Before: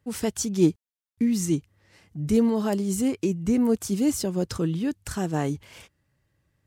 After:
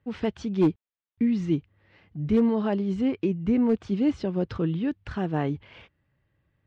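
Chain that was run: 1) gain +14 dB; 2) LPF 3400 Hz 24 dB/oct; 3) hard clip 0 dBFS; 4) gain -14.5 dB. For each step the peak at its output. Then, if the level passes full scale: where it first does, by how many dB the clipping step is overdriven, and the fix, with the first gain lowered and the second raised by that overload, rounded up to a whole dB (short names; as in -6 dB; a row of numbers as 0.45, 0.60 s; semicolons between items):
+6.0, +5.5, 0.0, -14.5 dBFS; step 1, 5.5 dB; step 1 +8 dB, step 4 -8.5 dB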